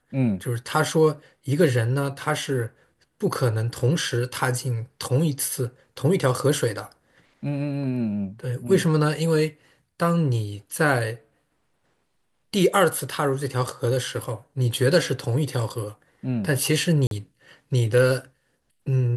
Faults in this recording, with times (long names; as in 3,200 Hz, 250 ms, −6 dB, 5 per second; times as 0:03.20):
0:17.07–0:17.11: drop-out 42 ms